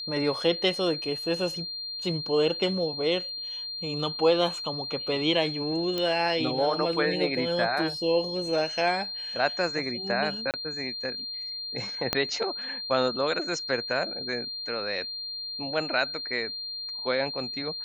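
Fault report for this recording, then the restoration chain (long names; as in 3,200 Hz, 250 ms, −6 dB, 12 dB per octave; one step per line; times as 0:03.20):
whistle 4,200 Hz −33 dBFS
0:05.98: click −15 dBFS
0:10.51–0:10.54: drop-out 28 ms
0:12.13: click −8 dBFS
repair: click removal
notch filter 4,200 Hz, Q 30
repair the gap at 0:10.51, 28 ms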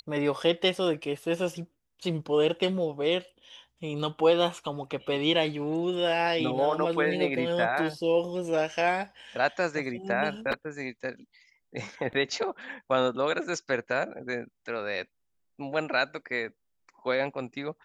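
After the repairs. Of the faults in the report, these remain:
0:12.13: click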